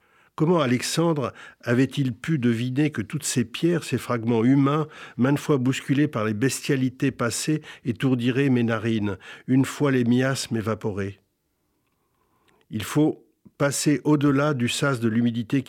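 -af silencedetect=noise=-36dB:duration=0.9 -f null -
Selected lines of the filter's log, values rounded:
silence_start: 11.12
silence_end: 12.71 | silence_duration: 1.59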